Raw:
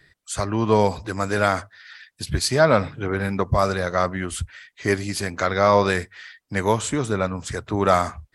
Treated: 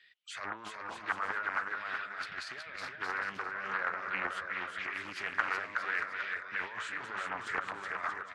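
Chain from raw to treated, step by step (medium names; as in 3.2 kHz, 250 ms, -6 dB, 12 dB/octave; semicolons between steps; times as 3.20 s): treble shelf 8.8 kHz -10 dB; compressor with a negative ratio -27 dBFS, ratio -1; auto-wah 630–3000 Hz, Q 3.6, down, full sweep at -14.5 dBFS; on a send: bouncing-ball echo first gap 370 ms, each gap 0.7×, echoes 5; on the sum: loudspeaker Doppler distortion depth 0.48 ms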